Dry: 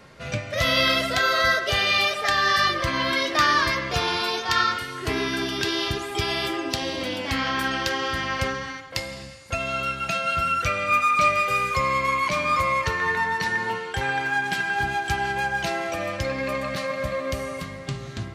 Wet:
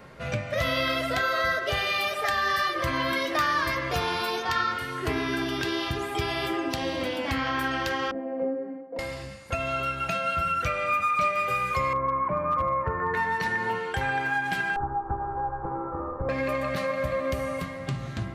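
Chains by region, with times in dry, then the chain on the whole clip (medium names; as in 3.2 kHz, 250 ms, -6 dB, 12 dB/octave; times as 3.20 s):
1.77–4.43 s: treble shelf 10 kHz +10 dB + hum notches 50/100/150 Hz + hard clipper -10 dBFS
8.11–8.99 s: Chebyshev band-pass 270–620 Hz + comb 4.2 ms, depth 94%
11.93–13.14 s: low-pass 1.4 kHz 24 dB/octave + overload inside the chain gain 17.5 dB
14.76–16.29 s: comb filter that takes the minimum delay 2.3 ms + elliptic low-pass 1.2 kHz, stop band 70 dB + peaking EQ 650 Hz -10 dB 0.25 oct
whole clip: compression 2:1, threshold -27 dBFS; peaking EQ 5.6 kHz -8 dB 2.1 oct; hum notches 50/100/150/200/250/300/350/400 Hz; trim +2.5 dB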